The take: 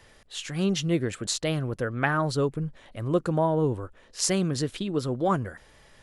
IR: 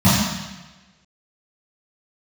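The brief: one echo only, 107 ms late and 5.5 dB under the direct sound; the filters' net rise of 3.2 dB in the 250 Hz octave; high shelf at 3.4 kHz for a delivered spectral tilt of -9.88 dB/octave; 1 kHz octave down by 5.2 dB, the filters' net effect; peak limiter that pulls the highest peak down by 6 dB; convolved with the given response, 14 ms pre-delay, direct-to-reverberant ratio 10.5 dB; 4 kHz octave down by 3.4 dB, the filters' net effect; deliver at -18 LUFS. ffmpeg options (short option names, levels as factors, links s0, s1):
-filter_complex "[0:a]equalizer=f=250:t=o:g=5.5,equalizer=f=1000:t=o:g=-7,highshelf=f=3400:g=3,equalizer=f=4000:t=o:g=-6.5,alimiter=limit=0.15:level=0:latency=1,aecho=1:1:107:0.531,asplit=2[s0][s1];[1:a]atrim=start_sample=2205,adelay=14[s2];[s1][s2]afir=irnorm=-1:irlink=0,volume=0.0211[s3];[s0][s3]amix=inputs=2:normalize=0,volume=1.33"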